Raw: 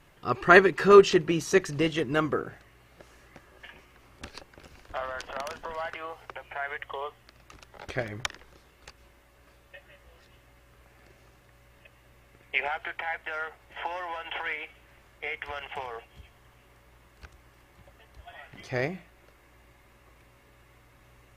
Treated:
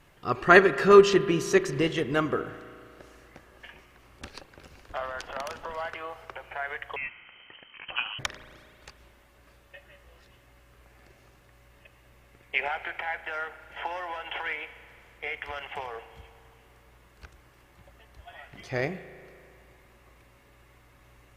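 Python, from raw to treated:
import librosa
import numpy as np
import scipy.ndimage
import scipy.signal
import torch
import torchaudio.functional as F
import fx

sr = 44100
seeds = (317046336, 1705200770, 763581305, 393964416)

y = fx.rev_spring(x, sr, rt60_s=2.5, pass_ms=(35,), chirp_ms=25, drr_db=13.5)
y = fx.freq_invert(y, sr, carrier_hz=3100, at=(6.96, 8.19))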